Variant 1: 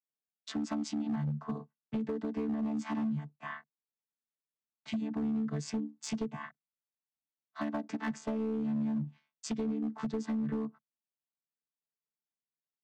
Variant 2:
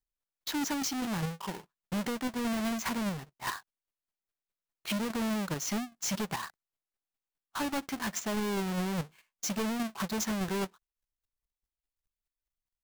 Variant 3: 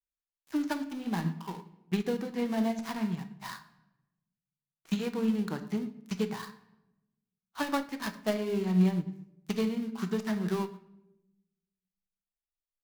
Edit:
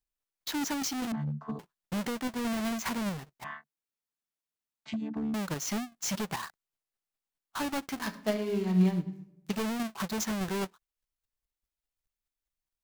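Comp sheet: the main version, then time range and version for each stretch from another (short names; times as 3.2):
2
1.12–1.59 from 1
3.44–5.34 from 1
8.04–9.53 from 3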